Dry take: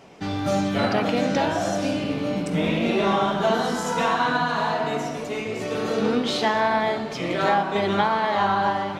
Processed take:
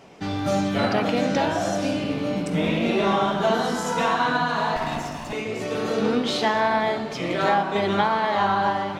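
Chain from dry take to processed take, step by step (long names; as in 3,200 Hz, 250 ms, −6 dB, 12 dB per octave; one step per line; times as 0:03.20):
0:04.76–0:05.33: lower of the sound and its delayed copy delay 1.1 ms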